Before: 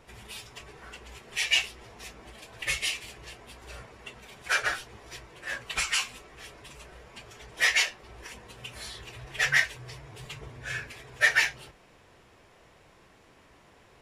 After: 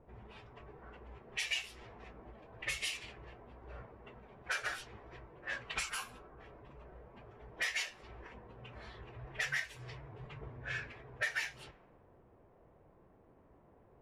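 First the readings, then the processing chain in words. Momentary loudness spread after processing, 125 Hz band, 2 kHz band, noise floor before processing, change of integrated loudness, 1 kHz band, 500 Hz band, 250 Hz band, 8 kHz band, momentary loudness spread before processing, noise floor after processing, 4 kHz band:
20 LU, -4.5 dB, -11.5 dB, -58 dBFS, -12.5 dB, -9.0 dB, -7.0 dB, -4.5 dB, -11.5 dB, 23 LU, -64 dBFS, -12.0 dB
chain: level-controlled noise filter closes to 680 Hz, open at -26.5 dBFS; time-frequency box 5.89–6.40 s, 1.7–9.4 kHz -11 dB; compression 4:1, threshold -31 dBFS, peak gain reduction 12 dB; trim -3.5 dB

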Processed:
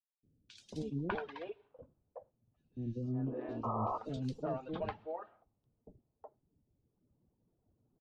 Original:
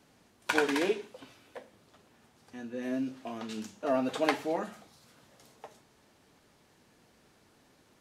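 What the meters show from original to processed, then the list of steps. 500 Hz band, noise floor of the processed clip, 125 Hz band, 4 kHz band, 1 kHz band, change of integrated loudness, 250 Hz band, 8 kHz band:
-8.5 dB, -84 dBFS, +11.0 dB, -15.5 dB, -4.5 dB, -7.5 dB, -6.0 dB, under -15 dB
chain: octave divider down 1 oct, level +1 dB; level-controlled noise filter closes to 520 Hz, open at -23.5 dBFS; reverb removal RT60 1.9 s; gate -58 dBFS, range -10 dB; peaking EQ 2 kHz -10 dB 0.97 oct; compression 6:1, threshold -35 dBFS, peak gain reduction 12 dB; painted sound noise, 3.03–3.38 s, 230–1300 Hz -37 dBFS; distance through air 98 m; three bands offset in time highs, lows, mids 230/600 ms, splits 440/3500 Hz; trim +2.5 dB

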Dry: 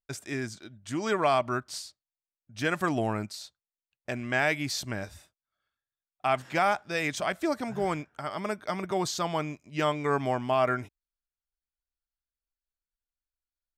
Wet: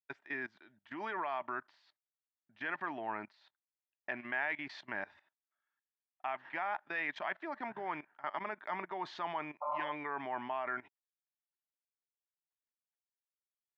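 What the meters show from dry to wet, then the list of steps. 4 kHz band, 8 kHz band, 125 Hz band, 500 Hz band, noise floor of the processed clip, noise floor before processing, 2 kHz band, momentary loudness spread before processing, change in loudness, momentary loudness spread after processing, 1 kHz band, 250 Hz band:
-15.5 dB, under -30 dB, -23.5 dB, -14.0 dB, under -85 dBFS, under -85 dBFS, -6.0 dB, 13 LU, -10.0 dB, 7 LU, -8.0 dB, -15.0 dB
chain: spectral replace 9.64–9.87 s, 470–1400 Hz after; level held to a coarse grid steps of 18 dB; cabinet simulation 350–3100 Hz, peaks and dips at 490 Hz -8 dB, 920 Hz +9 dB, 1.8 kHz +9 dB; trim -2.5 dB

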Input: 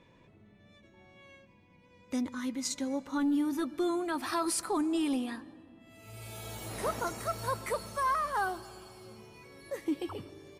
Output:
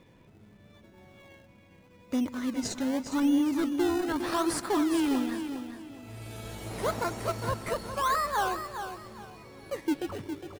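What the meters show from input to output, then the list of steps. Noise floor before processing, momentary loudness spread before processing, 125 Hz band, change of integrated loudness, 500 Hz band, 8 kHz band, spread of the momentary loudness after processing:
-61 dBFS, 20 LU, +5.5 dB, +3.0 dB, +3.5 dB, -0.5 dB, 17 LU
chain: treble shelf 11 kHz -9 dB; in parallel at -4 dB: decimation with a swept rate 27×, swing 100% 0.82 Hz; on the sum: feedback delay 409 ms, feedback 28%, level -9 dB

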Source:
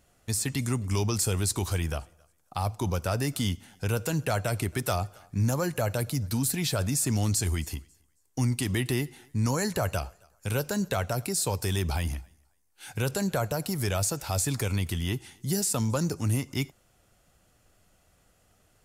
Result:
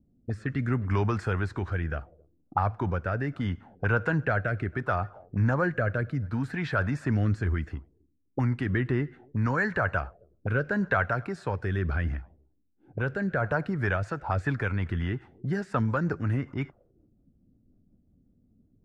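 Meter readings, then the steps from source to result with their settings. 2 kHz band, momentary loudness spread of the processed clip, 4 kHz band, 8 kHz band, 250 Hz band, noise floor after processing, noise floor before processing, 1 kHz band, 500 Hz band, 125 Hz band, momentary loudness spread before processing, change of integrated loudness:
+7.0 dB, 7 LU, -14.5 dB, under -25 dB, +0.5 dB, -68 dBFS, -66 dBFS, +3.5 dB, +0.5 dB, 0.0 dB, 8 LU, 0.0 dB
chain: rotary cabinet horn 0.7 Hz, later 5.5 Hz, at 13.23 s; touch-sensitive low-pass 240–1600 Hz up, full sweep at -29.5 dBFS; trim +1.5 dB

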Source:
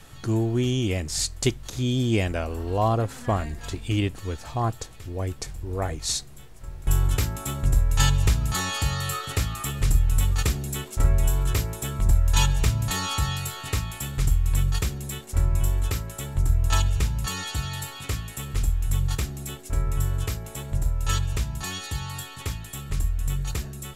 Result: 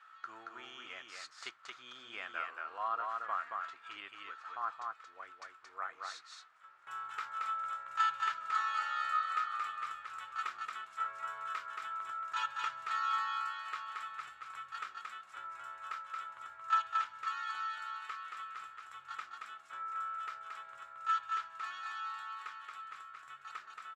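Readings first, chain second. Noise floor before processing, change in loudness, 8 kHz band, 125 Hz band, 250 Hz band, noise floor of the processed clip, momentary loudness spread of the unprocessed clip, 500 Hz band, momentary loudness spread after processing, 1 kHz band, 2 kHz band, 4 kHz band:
-42 dBFS, -12.5 dB, -27.5 dB, under -40 dB, under -35 dB, -59 dBFS, 9 LU, -24.5 dB, 15 LU, -1.5 dB, -6.0 dB, -16.0 dB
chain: ladder band-pass 1.4 kHz, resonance 75%; delay 226 ms -3.5 dB; trim +1 dB

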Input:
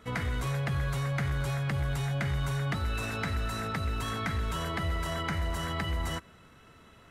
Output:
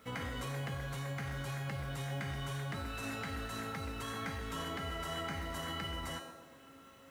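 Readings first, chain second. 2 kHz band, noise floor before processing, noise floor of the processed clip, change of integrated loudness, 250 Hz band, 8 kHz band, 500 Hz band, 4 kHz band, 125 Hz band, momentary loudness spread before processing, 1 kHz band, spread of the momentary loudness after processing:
-6.5 dB, -56 dBFS, -58 dBFS, -8.0 dB, -7.0 dB, -4.5 dB, -5.5 dB, -4.0 dB, -10.0 dB, 2 LU, -6.0 dB, 5 LU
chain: high-pass 110 Hz 6 dB/octave; peak limiter -27.5 dBFS, peak gain reduction 5.5 dB; feedback comb 270 Hz, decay 0.94 s, mix 90%; companded quantiser 8-bit; feedback echo behind a band-pass 126 ms, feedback 57%, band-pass 510 Hz, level -5 dB; trim +13.5 dB

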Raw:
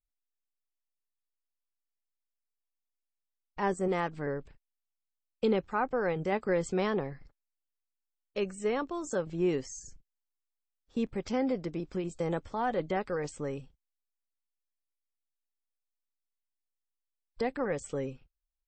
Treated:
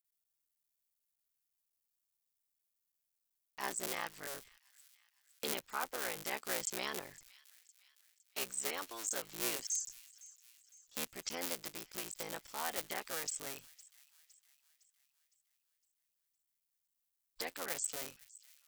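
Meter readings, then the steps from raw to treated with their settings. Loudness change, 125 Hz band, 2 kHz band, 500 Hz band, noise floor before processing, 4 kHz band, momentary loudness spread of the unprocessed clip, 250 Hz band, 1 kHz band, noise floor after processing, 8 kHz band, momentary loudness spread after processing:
-6.5 dB, -21.0 dB, -3.5 dB, -15.0 dB, under -85 dBFS, +5.0 dB, 10 LU, -18.5 dB, -9.0 dB, under -85 dBFS, +9.0 dB, 16 LU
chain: cycle switcher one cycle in 3, muted; pre-emphasis filter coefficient 0.97; feedback echo behind a high-pass 510 ms, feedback 49%, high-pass 2.4 kHz, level -19.5 dB; trim +9.5 dB

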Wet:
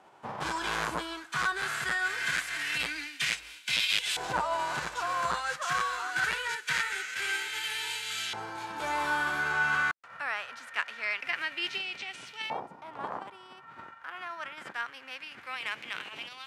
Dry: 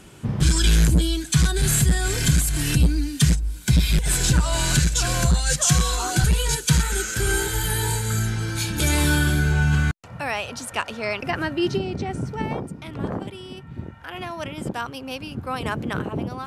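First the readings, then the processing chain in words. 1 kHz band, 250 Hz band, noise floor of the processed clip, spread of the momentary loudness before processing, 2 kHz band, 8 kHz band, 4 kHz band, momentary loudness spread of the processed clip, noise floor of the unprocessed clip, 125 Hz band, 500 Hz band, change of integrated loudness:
-1.5 dB, -21.5 dB, -52 dBFS, 12 LU, -1.0 dB, -17.5 dB, -6.0 dB, 12 LU, -41 dBFS, -30.0 dB, -12.0 dB, -9.5 dB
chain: formants flattened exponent 0.6; LFO band-pass saw up 0.24 Hz 800–3100 Hz

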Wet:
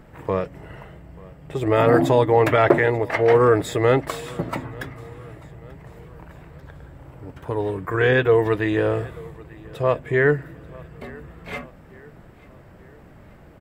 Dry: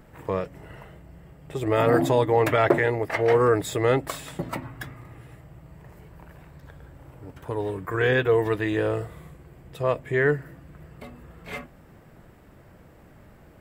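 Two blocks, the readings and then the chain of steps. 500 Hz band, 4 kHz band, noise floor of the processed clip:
+4.0 dB, +2.0 dB, -47 dBFS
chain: treble shelf 5.9 kHz -7.5 dB; on a send: feedback delay 887 ms, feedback 48%, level -23 dB; on the sum: trim +4 dB

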